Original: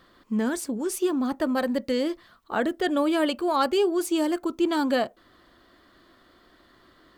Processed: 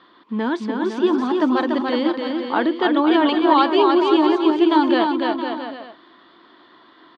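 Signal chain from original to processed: cabinet simulation 230–4100 Hz, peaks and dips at 320 Hz +5 dB, 560 Hz -5 dB, 960 Hz +9 dB, 3.5 kHz +5 dB; bouncing-ball echo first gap 290 ms, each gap 0.75×, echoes 5; trim +4 dB

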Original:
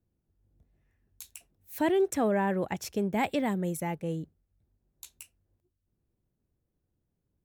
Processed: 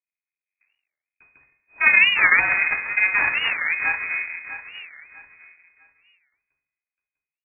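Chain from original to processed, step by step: gate with hold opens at -56 dBFS; high-order bell 700 Hz +14.5 dB 2.7 oct; feedback delay 649 ms, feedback 30%, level -12 dB; two-slope reverb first 0.66 s, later 2.3 s, from -25 dB, DRR -2 dB; half-wave rectifier; frequency inversion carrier 2.5 kHz; warped record 45 rpm, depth 250 cents; trim -6 dB

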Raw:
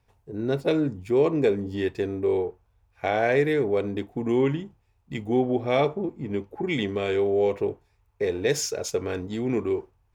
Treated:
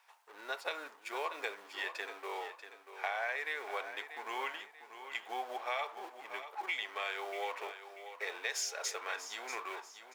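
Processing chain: companding laws mixed up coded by mu; high-pass 930 Hz 24 dB/octave; tilt EQ -2 dB/octave; compression 5:1, threshold -36 dBFS, peak gain reduction 9.5 dB; on a send: feedback delay 638 ms, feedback 37%, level -11 dB; on the sum: trim +2.5 dB

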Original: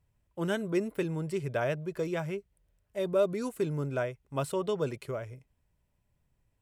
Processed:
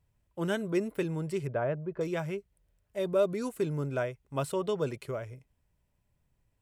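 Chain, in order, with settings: 1.47–2.01 s: low-pass 1.4 kHz 12 dB/octave

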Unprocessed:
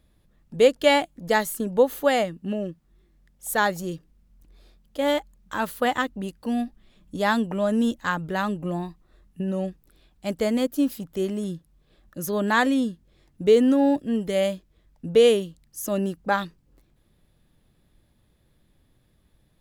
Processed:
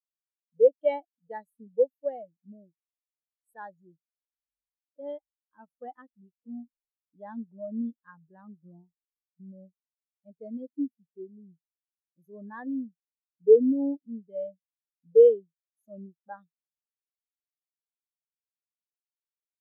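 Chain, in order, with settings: treble shelf 7.2 kHz +4 dB; spectral contrast expander 2.5:1; trim -2.5 dB

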